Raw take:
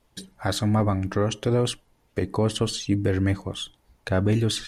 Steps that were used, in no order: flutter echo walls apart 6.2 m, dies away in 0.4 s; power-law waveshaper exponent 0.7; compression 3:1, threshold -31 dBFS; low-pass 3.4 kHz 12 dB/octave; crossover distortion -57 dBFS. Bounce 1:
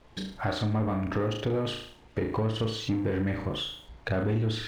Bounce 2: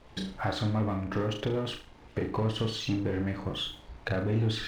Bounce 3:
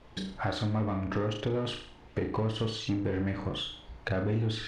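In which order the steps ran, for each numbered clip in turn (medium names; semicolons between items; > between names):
flutter echo > compression > power-law waveshaper > low-pass > crossover distortion; power-law waveshaper > low-pass > compression > flutter echo > crossover distortion; power-law waveshaper > crossover distortion > flutter echo > compression > low-pass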